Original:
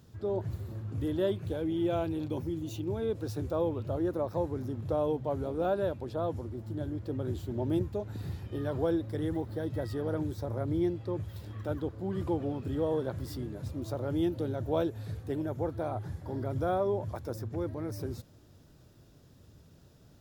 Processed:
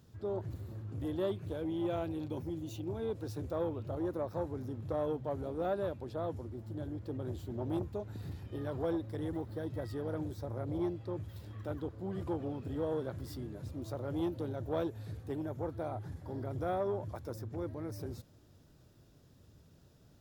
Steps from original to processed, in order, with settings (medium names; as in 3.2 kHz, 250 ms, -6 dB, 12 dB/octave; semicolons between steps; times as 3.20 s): transformer saturation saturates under 400 Hz; trim -4 dB